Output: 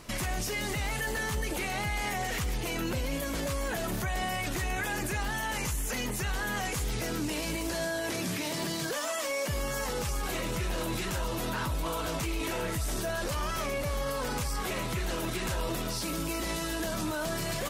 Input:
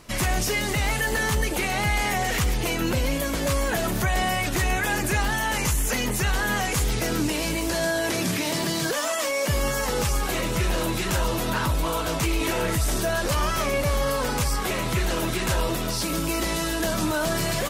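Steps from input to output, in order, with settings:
brickwall limiter −24.5 dBFS, peak gain reduction 9.5 dB

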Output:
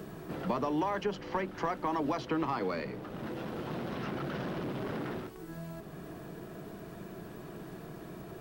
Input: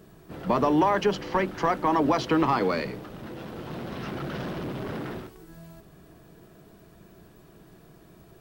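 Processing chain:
multiband upward and downward compressor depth 70%
level −8 dB

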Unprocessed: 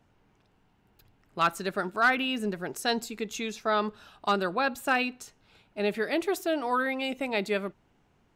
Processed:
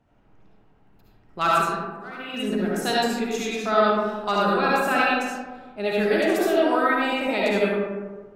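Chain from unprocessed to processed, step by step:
0:01.56–0:02.34: volume swells 771 ms
comb and all-pass reverb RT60 1.5 s, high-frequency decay 0.4×, pre-delay 30 ms, DRR −6 dB
one half of a high-frequency compander decoder only

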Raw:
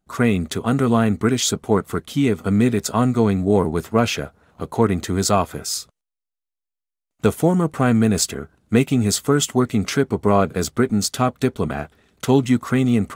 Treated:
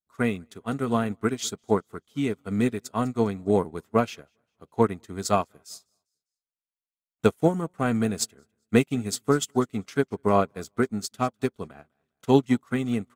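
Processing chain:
low-shelf EQ 170 Hz −5 dB
on a send: repeating echo 201 ms, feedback 39%, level −22 dB
on the sum: expander for the loud parts 2.5 to 1, over −31 dBFS

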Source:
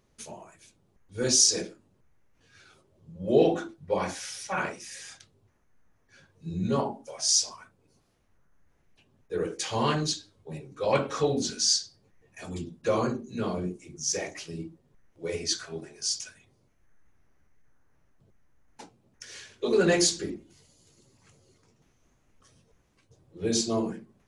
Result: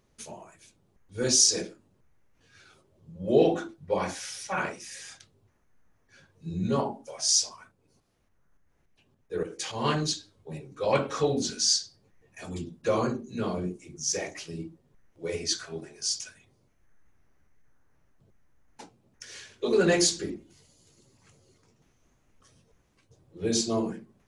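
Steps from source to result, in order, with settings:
0:07.47–0:09.84: shaped tremolo saw up 3.5 Hz, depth 35% → 65%

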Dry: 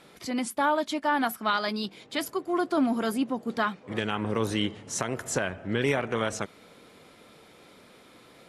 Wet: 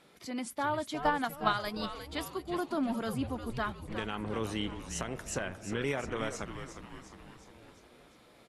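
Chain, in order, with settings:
echo with shifted repeats 356 ms, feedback 58%, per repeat −140 Hz, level −9 dB
0:01.00–0:01.86: transient designer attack +10 dB, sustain −4 dB
level −7.5 dB

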